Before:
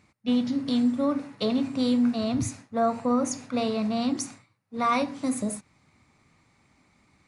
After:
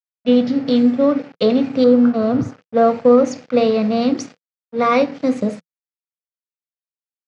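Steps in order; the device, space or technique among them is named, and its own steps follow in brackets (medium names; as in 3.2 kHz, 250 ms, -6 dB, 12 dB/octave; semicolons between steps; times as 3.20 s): 1.84–2.62 s: resonant high shelf 1.8 kHz -10 dB, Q 3; blown loudspeaker (crossover distortion -44.5 dBFS; cabinet simulation 130–5100 Hz, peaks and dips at 170 Hz +4 dB, 490 Hz +10 dB, 1 kHz -6 dB, 3.8 kHz -4 dB); trim +9 dB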